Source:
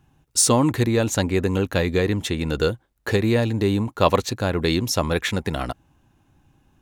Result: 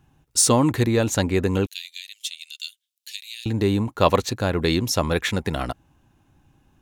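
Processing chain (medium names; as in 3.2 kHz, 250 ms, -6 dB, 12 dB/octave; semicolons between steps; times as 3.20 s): 1.66–3.46 s: steep high-pass 2.8 kHz 36 dB/octave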